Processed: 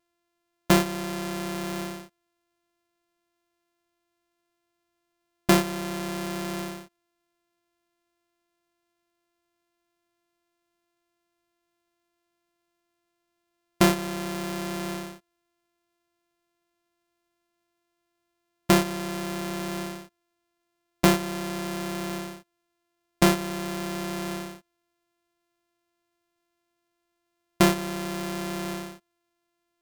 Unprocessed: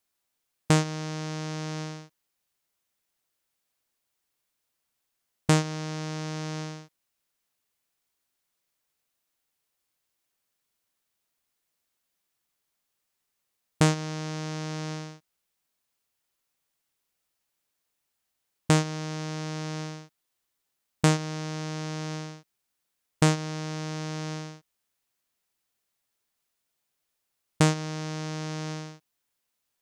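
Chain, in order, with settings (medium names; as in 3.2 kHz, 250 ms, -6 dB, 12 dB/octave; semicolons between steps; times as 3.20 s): sorted samples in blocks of 128 samples; trim +2 dB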